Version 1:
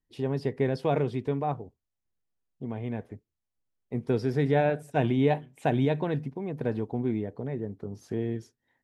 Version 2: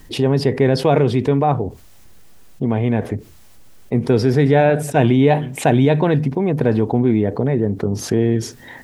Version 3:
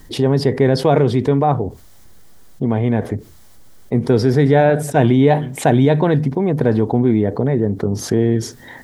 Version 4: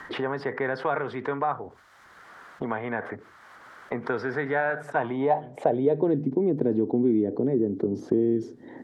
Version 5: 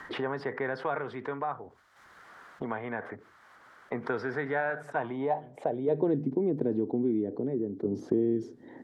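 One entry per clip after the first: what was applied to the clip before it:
fast leveller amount 50%; gain +9 dB
bell 2600 Hz -7.5 dB 0.31 oct; gain +1 dB
band-pass sweep 1400 Hz -> 320 Hz, 4.82–6.18; three-band squash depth 70%; gain -2 dB
tremolo saw down 0.51 Hz, depth 45%; gain -3 dB

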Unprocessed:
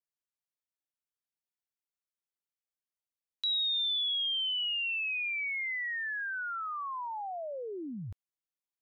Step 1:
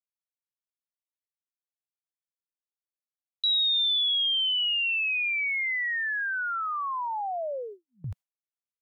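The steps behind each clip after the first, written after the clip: Chebyshev band-stop 160–540 Hz, order 2; gate with hold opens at -37 dBFS; gain +7 dB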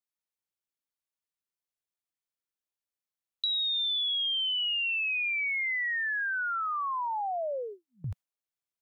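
compressor, threshold -28 dBFS, peak gain reduction 5.5 dB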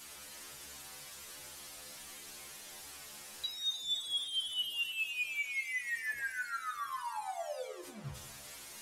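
delta modulation 64 kbps, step -34 dBFS; metallic resonator 70 Hz, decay 0.36 s, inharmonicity 0.002; split-band echo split 1400 Hz, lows 95 ms, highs 0.298 s, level -8.5 dB

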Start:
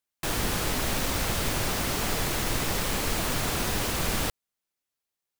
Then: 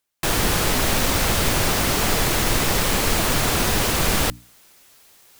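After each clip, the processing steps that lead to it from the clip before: reverse; upward compressor, threshold -38 dBFS; reverse; notches 60/120/180/240/300 Hz; gain +8 dB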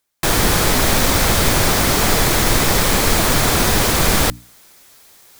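bell 2800 Hz -4.5 dB 0.22 oct; gain +5 dB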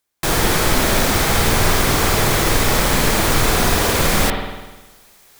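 spring tank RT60 1.2 s, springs 50 ms, chirp 70 ms, DRR 1.5 dB; gain -2.5 dB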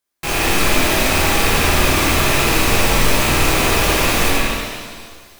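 rattling part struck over -31 dBFS, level -8 dBFS; shimmer reverb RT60 1.6 s, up +7 st, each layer -8 dB, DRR -5.5 dB; gain -7 dB

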